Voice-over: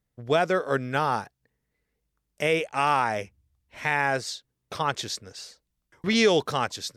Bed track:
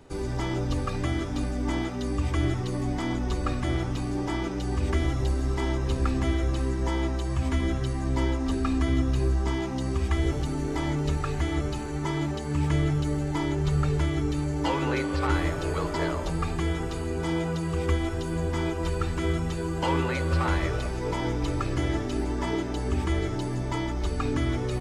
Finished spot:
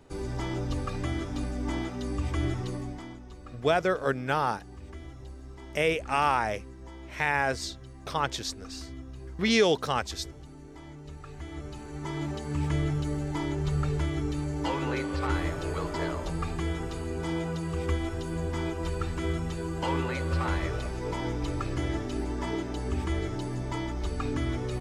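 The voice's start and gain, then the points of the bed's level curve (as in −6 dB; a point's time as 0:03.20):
3.35 s, −2.0 dB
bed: 0:02.69 −3.5 dB
0:03.24 −18 dB
0:11.02 −18 dB
0:12.32 −3.5 dB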